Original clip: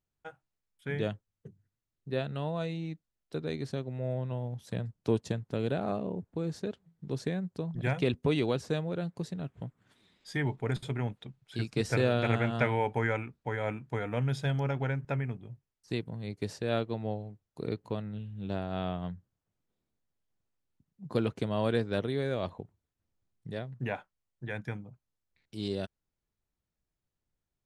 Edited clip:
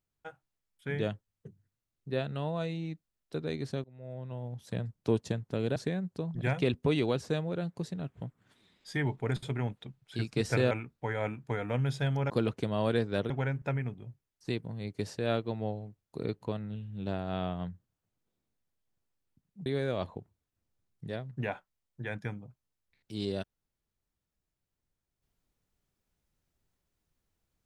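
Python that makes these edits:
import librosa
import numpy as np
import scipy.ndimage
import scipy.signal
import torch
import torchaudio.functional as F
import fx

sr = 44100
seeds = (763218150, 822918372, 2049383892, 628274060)

y = fx.edit(x, sr, fx.fade_in_from(start_s=3.84, length_s=0.92, floor_db=-23.0),
    fx.cut(start_s=5.76, length_s=1.4),
    fx.cut(start_s=12.11, length_s=1.03),
    fx.move(start_s=21.09, length_s=1.0, to_s=14.73), tone=tone)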